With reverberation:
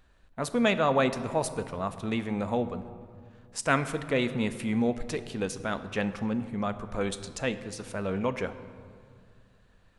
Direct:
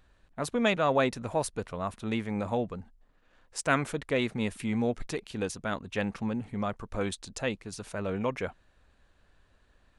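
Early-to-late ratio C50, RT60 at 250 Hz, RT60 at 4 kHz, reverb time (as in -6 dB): 12.5 dB, 2.7 s, 1.1 s, 2.2 s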